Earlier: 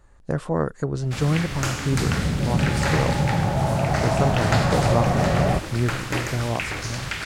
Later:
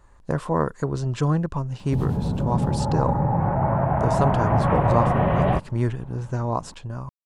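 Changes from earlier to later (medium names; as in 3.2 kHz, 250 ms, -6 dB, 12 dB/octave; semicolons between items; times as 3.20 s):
first sound: muted; master: add peaking EQ 1 kHz +8.5 dB 0.3 oct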